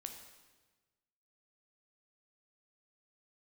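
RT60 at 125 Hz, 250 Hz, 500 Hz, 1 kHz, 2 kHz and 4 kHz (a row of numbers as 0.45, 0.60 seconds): 1.7, 1.4, 1.3, 1.2, 1.2, 1.2 seconds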